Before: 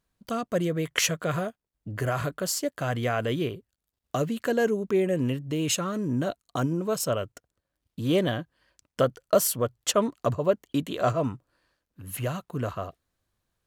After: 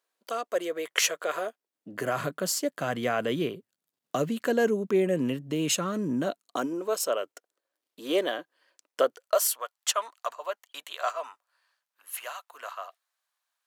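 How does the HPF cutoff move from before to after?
HPF 24 dB/oct
1.34 s 400 Hz
2.18 s 160 Hz
6.1 s 160 Hz
6.91 s 350 Hz
9.07 s 350 Hz
9.49 s 780 Hz

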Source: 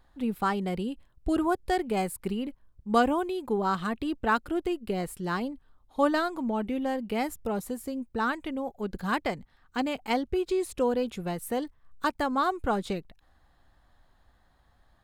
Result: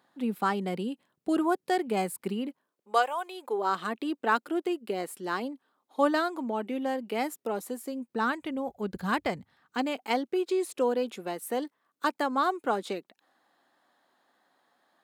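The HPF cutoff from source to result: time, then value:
HPF 24 dB/oct
2.48 s 180 Hz
3.14 s 710 Hz
3.78 s 250 Hz
7.99 s 250 Hz
8.65 s 62 Hz
9.31 s 62 Hz
9.86 s 250 Hz

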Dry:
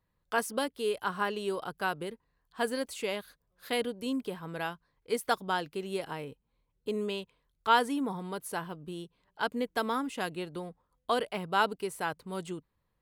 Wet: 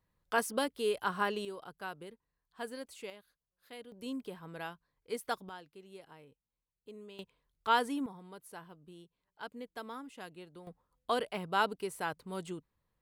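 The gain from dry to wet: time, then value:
-1 dB
from 1.45 s -10.5 dB
from 3.1 s -18 dB
from 3.92 s -7 dB
from 5.49 s -17 dB
from 7.19 s -4 dB
from 8.06 s -13 dB
from 10.67 s -3 dB

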